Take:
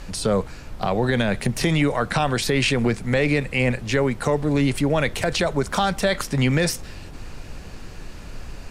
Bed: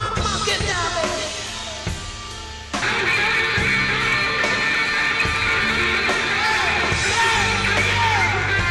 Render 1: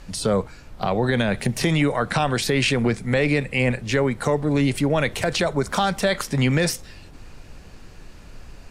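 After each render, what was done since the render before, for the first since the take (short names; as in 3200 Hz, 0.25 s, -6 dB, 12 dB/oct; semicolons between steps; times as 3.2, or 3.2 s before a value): noise print and reduce 6 dB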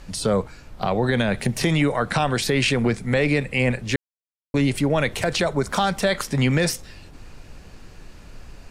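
3.96–4.54 mute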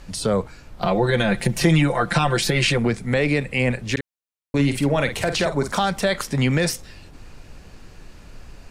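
0.82–2.78 comb 5.8 ms, depth 82%; 3.92–5.73 doubler 49 ms -9 dB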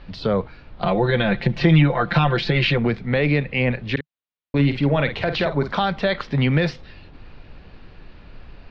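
dynamic EQ 150 Hz, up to +5 dB, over -35 dBFS, Q 6.7; steep low-pass 4200 Hz 36 dB/oct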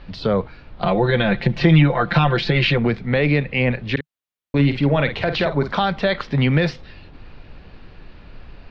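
gain +1.5 dB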